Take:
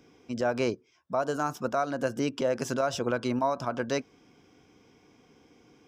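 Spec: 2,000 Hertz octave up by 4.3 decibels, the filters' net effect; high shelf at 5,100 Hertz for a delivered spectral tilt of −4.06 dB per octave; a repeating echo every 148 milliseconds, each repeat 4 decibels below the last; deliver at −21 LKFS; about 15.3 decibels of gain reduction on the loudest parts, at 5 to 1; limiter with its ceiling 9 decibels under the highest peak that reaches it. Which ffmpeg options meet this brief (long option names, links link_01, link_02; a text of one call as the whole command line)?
ffmpeg -i in.wav -af "equalizer=frequency=2000:width_type=o:gain=5,highshelf=frequency=5100:gain=9,acompressor=threshold=-40dB:ratio=5,alimiter=level_in=11dB:limit=-24dB:level=0:latency=1,volume=-11dB,aecho=1:1:148|296|444|592|740|888|1036|1184|1332:0.631|0.398|0.25|0.158|0.0994|0.0626|0.0394|0.0249|0.0157,volume=24dB" out.wav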